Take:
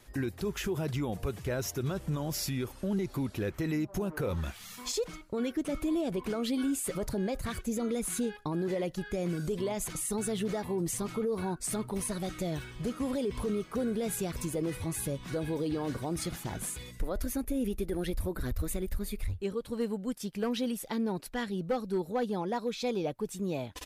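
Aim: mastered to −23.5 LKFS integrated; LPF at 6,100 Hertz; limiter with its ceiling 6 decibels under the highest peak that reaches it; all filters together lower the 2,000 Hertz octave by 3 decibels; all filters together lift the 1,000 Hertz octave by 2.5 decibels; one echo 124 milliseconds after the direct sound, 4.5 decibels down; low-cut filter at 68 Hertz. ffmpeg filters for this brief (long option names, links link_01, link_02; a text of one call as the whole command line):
ffmpeg -i in.wav -af "highpass=68,lowpass=6100,equalizer=frequency=1000:width_type=o:gain=4.5,equalizer=frequency=2000:width_type=o:gain=-5.5,alimiter=level_in=2.5dB:limit=-24dB:level=0:latency=1,volume=-2.5dB,aecho=1:1:124:0.596,volume=11.5dB" out.wav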